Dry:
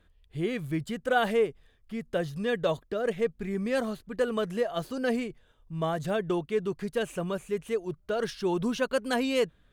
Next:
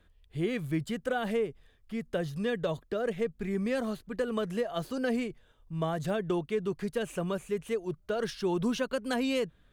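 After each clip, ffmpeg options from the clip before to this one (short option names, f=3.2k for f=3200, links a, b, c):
-filter_complex "[0:a]acrossover=split=280[a][b];[b]acompressor=threshold=-28dB:ratio=10[c];[a][c]amix=inputs=2:normalize=0"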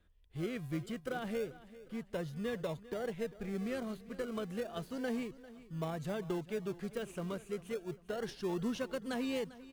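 -filter_complex "[0:a]asplit=2[a][b];[b]acrusher=samples=39:mix=1:aa=0.000001:lfo=1:lforange=23.4:lforate=0.31,volume=-10dB[c];[a][c]amix=inputs=2:normalize=0,aecho=1:1:397|794|1191:0.133|0.0547|0.0224,volume=-8.5dB"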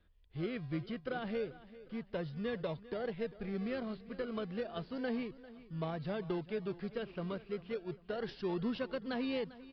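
-af "aresample=11025,aresample=44100"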